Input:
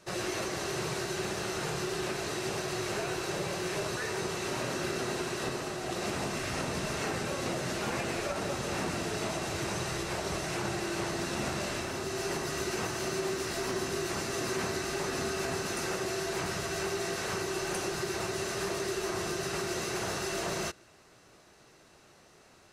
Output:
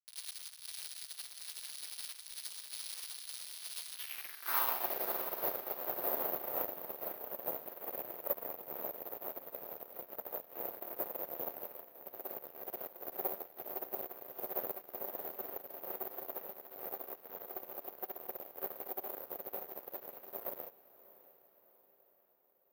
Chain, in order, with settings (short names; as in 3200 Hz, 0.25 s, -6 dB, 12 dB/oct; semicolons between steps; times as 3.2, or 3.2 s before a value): 4.46–6.64 bell 1000 Hz +9.5 dB 0.9 oct; bit-crush 5-bit; added harmonics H 3 -12 dB, 4 -13 dB, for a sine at -18 dBFS; band-pass sweep 4400 Hz -> 560 Hz, 3.86–4.98; diffused feedback echo 0.642 s, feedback 53%, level -7.5 dB; careless resampling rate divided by 3×, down filtered, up zero stuff; upward expander 2.5:1, over -44 dBFS; gain +3 dB